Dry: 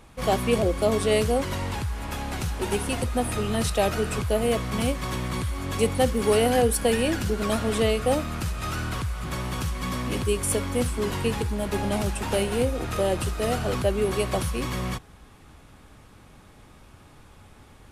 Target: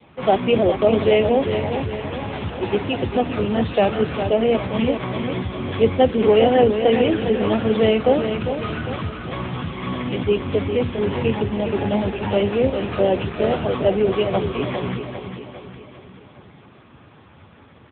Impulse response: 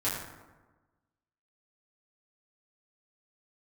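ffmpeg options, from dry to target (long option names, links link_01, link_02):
-filter_complex "[0:a]bandreject=frequency=60:width_type=h:width=6,bandreject=frequency=120:width_type=h:width=6,bandreject=frequency=180:width_type=h:width=6,bandreject=frequency=240:width_type=h:width=6,bandreject=frequency=300:width_type=h:width=6,adynamicequalizer=threshold=0.00398:dfrequency=1300:dqfactor=2.6:tfrequency=1300:tqfactor=2.6:attack=5:release=100:ratio=0.375:range=1.5:mode=cutabove:tftype=bell,aecho=1:1:403|806|1209|1612|2015|2418:0.422|0.211|0.105|0.0527|0.0264|0.0132,acrossover=split=160[link_01][link_02];[link_01]aeval=exprs='clip(val(0),-1,0.0473)':channel_layout=same[link_03];[link_03][link_02]amix=inputs=2:normalize=0,volume=7dB" -ar 8000 -c:a libopencore_amrnb -b:a 6700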